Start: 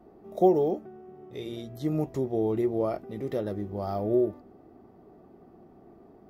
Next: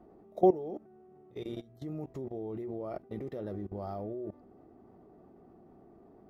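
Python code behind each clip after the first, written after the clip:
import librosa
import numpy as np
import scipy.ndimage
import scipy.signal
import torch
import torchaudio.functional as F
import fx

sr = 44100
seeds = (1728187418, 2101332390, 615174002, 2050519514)

y = fx.level_steps(x, sr, step_db=19)
y = fx.high_shelf(y, sr, hz=3100.0, db=-8.0)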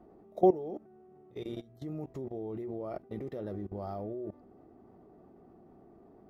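y = x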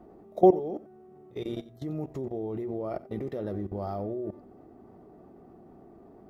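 y = x + 10.0 ** (-18.5 / 20.0) * np.pad(x, (int(90 * sr / 1000.0), 0))[:len(x)]
y = F.gain(torch.from_numpy(y), 5.0).numpy()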